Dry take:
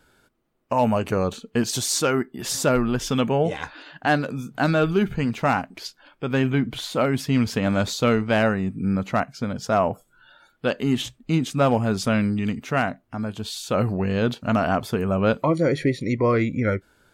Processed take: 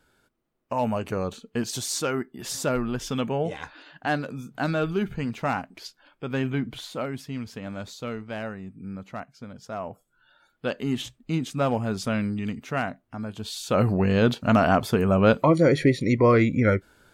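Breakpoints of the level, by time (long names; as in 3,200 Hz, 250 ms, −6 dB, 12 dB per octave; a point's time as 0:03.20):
0:06.69 −5.5 dB
0:07.42 −13.5 dB
0:09.77 −13.5 dB
0:10.65 −5 dB
0:13.28 −5 dB
0:13.93 +2 dB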